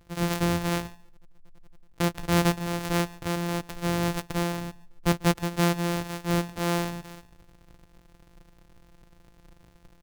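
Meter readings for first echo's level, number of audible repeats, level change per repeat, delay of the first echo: −22.5 dB, 1, repeats not evenly spaced, 144 ms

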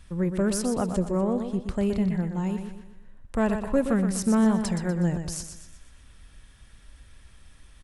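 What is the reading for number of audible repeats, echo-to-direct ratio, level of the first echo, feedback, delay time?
4, −7.0 dB, −8.0 dB, 43%, 122 ms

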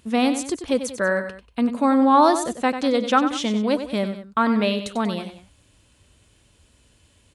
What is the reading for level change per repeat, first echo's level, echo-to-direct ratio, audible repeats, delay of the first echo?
−6.5 dB, −10.0 dB, −9.0 dB, 2, 94 ms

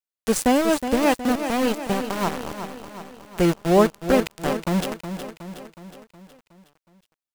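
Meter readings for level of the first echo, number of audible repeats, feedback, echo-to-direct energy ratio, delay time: −9.5 dB, 5, 55%, −8.0 dB, 367 ms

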